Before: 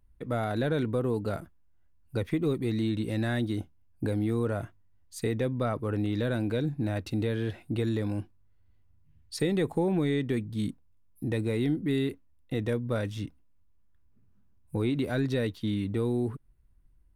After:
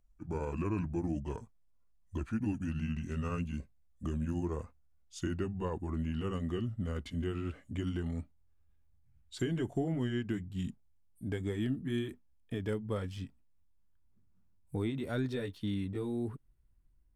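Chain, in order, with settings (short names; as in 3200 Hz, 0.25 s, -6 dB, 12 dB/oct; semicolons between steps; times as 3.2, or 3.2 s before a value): gliding pitch shift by -7 st ending unshifted; gain -5 dB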